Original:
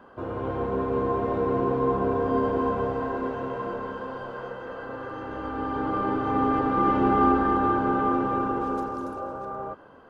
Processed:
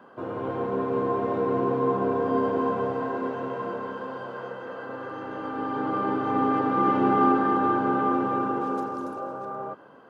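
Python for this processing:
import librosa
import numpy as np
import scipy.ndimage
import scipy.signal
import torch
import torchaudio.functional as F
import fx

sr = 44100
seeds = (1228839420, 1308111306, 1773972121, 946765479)

y = scipy.signal.sosfilt(scipy.signal.butter(4, 120.0, 'highpass', fs=sr, output='sos'), x)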